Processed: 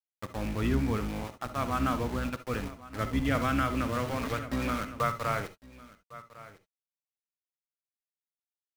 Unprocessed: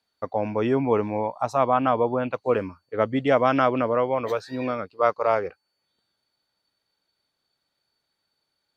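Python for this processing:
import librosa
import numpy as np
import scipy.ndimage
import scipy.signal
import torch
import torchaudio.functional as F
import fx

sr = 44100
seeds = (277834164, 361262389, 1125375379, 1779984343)

y = fx.octave_divider(x, sr, octaves=2, level_db=-2.0)
y = scipy.signal.sosfilt(scipy.signal.butter(2, 5600.0, 'lowpass', fs=sr, output='sos'), y)
y = fx.band_shelf(y, sr, hz=610.0, db=-11.0, octaves=1.7)
y = fx.rider(y, sr, range_db=3, speed_s=2.0)
y = np.where(np.abs(y) >= 10.0 ** (-31.5 / 20.0), y, 0.0)
y = y + 10.0 ** (-17.5 / 20.0) * np.pad(y, (int(1104 * sr / 1000.0), 0))[:len(y)]
y = fx.rev_gated(y, sr, seeds[0], gate_ms=90, shape='rising', drr_db=10.0)
y = fx.band_squash(y, sr, depth_pct=70, at=(3.35, 5.41))
y = y * librosa.db_to_amplitude(-4.5)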